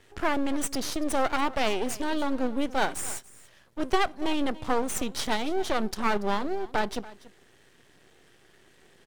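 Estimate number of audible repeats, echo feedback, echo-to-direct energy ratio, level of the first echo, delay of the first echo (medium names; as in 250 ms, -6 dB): 1, no regular repeats, -19.0 dB, -19.0 dB, 285 ms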